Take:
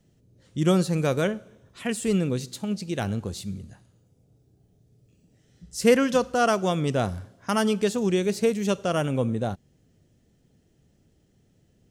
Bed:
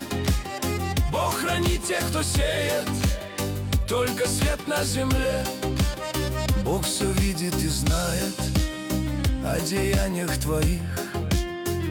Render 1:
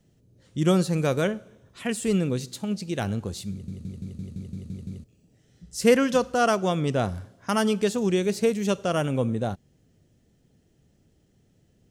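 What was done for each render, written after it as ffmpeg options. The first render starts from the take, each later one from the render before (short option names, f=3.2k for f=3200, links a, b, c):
-filter_complex "[0:a]asettb=1/sr,asplit=3[a][b][c];[a]atrim=end=6.554[d];[b]atrim=start=6.55:end=7.15,asetpts=PTS-STARTPTS,afade=t=in:d=0.004:c=qsin,afade=t=out:st=0.596:d=0.004:c=qsin,highshelf=f=5.9k:g=-4[e];[c]atrim=start=7.146[f];[d][e]acrossfade=d=0.004:c1=hsin:c2=qsin[g];[g][f]acrossfade=d=0.004:c1=qsin:c2=hsin,asplit=10[h][i][j][k][l][m][n][o][p][q];[h]atrim=end=3.682[r];[i]atrim=start=3.508:end=3.682[s];[j]atrim=start=3.508:end=3.682[t];[k]atrim=start=3.508:end=3.682[u];[l]atrim=start=3.508:end=3.682[v];[m]atrim=start=3.508:end=3.682[w];[n]atrim=start=3.508:end=3.682[x];[o]atrim=start=3.508:end=3.682[y];[p]atrim=start=3.508:end=3.682[z];[q]atrim=start=5.038[aa];[r][s]acrossfade=d=0.004:c1=hsin:c2=hsin[ab];[ab][t]acrossfade=d=0.004:c1=hsin:c2=hsin[ac];[ac][u]acrossfade=d=0.004:c1=hsin:c2=hsin[ad];[ad][v]acrossfade=d=0.004:c1=hsin:c2=hsin[ae];[ae][w]acrossfade=d=0.004:c1=hsin:c2=hsin[af];[af][x]acrossfade=d=0.004:c1=hsin:c2=hsin[ag];[ag][y]acrossfade=d=0.004:c1=hsin:c2=hsin[ah];[ah][z]acrossfade=d=0.004:c1=hsin:c2=hsin[ai];[ai][aa]acrossfade=d=0.004:c1=hsin:c2=hsin"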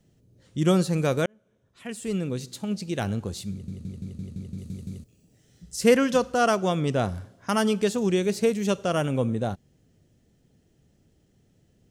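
-filter_complex "[0:a]asettb=1/sr,asplit=3[a][b][c];[a]atrim=end=4.584[d];[b]atrim=start=4.58:end=5.76,asetpts=PTS-STARTPTS,afade=t=in:d=0.004:c=qsin,afade=t=out:st=1.176:d=0.004:c=qsin,highshelf=f=5.3k:g=8[e];[c]atrim=start=5.756[f];[d][e]acrossfade=d=0.004:c1=hsin:c2=qsin[g];[g][f]acrossfade=d=0.004:c1=qsin:c2=hsin,asplit=2[h][i];[h]atrim=end=1.26,asetpts=PTS-STARTPTS,afade=t=out:st=1.256:d=0.004:c=hsin[j];[i]atrim=start=1.26,asetpts=PTS-STARTPTS,afade=t=in:d=1.54[k];[j][k]concat=n=2:v=0:a=1"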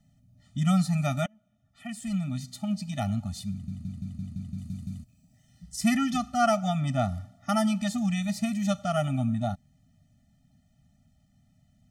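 -af "afftfilt=real='re*eq(mod(floor(b*sr/1024/290),2),0)':imag='im*eq(mod(floor(b*sr/1024/290),2),0)':win_size=1024:overlap=0.75"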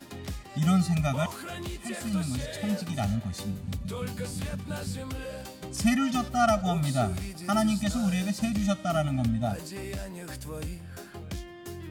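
-filter_complex "[1:a]volume=-13.5dB[a];[0:a][a]amix=inputs=2:normalize=0"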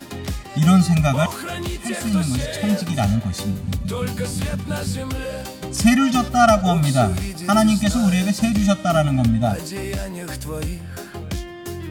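-af "volume=9.5dB"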